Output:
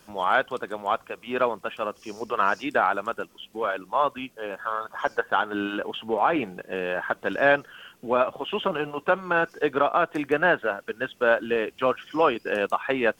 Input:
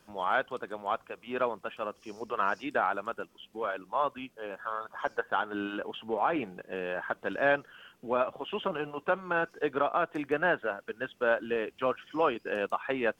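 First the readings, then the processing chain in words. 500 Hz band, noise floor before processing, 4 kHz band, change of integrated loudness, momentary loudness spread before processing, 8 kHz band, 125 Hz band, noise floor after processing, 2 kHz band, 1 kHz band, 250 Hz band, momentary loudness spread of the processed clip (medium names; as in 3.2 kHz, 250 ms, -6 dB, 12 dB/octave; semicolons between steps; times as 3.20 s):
+6.0 dB, -64 dBFS, +8.0 dB, +6.5 dB, 10 LU, no reading, +6.0 dB, -57 dBFS, +6.5 dB, +6.5 dB, +6.0 dB, 10 LU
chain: treble shelf 4.2 kHz +5 dB; trim +6 dB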